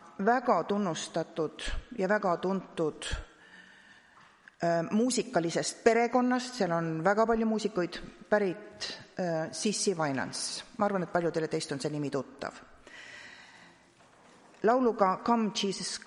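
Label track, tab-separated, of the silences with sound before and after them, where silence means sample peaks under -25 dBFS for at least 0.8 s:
3.140000	4.630000	silence
12.470000	14.640000	silence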